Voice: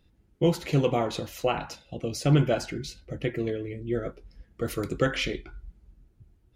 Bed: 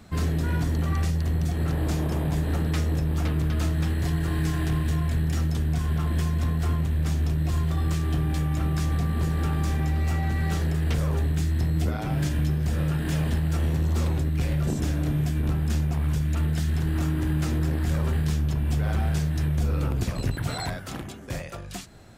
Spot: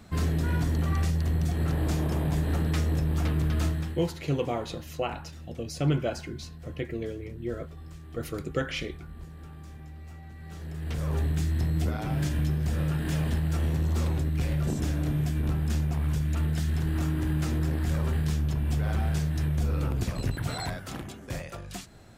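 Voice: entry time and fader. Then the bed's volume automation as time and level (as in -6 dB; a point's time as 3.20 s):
3.55 s, -4.5 dB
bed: 3.67 s -1.5 dB
4.20 s -19.5 dB
10.38 s -19.5 dB
11.16 s -2.5 dB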